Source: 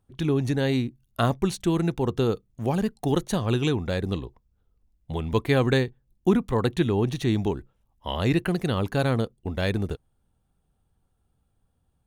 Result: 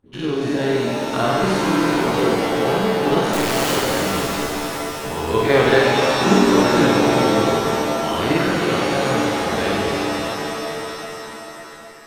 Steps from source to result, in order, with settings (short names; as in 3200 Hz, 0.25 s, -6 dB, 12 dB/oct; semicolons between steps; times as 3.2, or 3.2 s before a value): spectral dilation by 0.12 s; LPF 2800 Hz 6 dB/oct; low shelf 160 Hz -11.5 dB; in parallel at -1.5 dB: level quantiser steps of 20 dB; 3.33–3.76 on the sum: wrapped overs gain 18 dB; on a send: flutter echo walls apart 8.1 m, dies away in 0.6 s; on the sum: shimmer reverb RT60 3.6 s, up +7 st, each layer -2 dB, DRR 0.5 dB; gain -2.5 dB